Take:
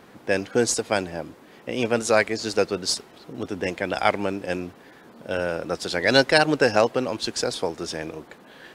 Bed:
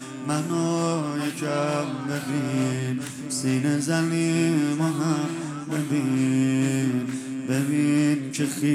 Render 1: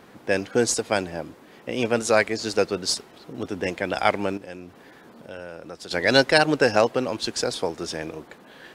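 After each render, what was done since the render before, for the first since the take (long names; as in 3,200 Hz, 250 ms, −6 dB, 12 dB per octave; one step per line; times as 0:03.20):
0:04.37–0:05.91: downward compressor 2 to 1, threshold −42 dBFS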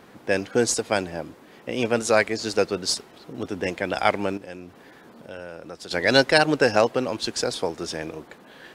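no processing that can be heard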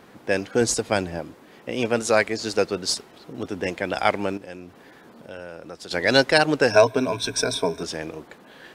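0:00.61–0:01.19: low-shelf EQ 160 Hz +7.5 dB
0:06.70–0:07.83: EQ curve with evenly spaced ripples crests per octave 1.6, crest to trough 16 dB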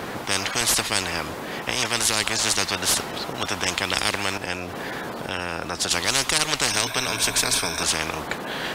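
every bin compressed towards the loudest bin 10 to 1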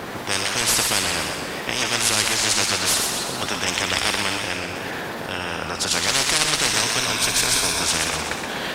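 delay with a high-pass on its return 60 ms, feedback 73%, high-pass 1,600 Hz, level −7 dB
feedback echo with a swinging delay time 126 ms, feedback 56%, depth 127 cents, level −6 dB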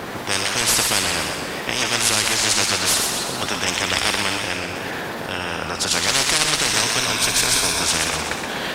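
level +1.5 dB
brickwall limiter −3 dBFS, peak gain reduction 2.5 dB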